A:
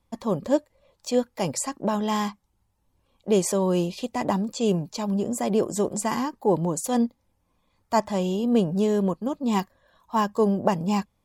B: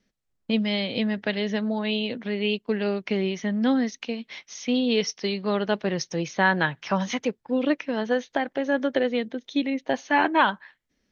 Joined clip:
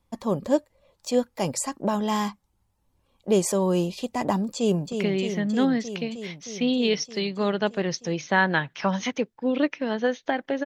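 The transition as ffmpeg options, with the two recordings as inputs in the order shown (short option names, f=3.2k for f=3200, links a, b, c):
-filter_complex "[0:a]apad=whole_dur=10.65,atrim=end=10.65,atrim=end=4.922[a];[1:a]atrim=start=2.988:end=8.72[b];[a][b]acrossfade=d=0.004:c1=hsin:c2=hsin,asplit=2[c][d];[d]afade=t=in:st=4.56:d=0.01,afade=t=out:st=4.92:d=0.01,aecho=0:1:310|620|930|1240|1550|1860|2170|2480|2790|3100|3410|3720:0.473151|0.378521|0.302817|0.242253|0.193803|0.155042|0.124034|0.099227|0.0793816|0.0635053|0.0508042|0.0406434[e];[c][e]amix=inputs=2:normalize=0"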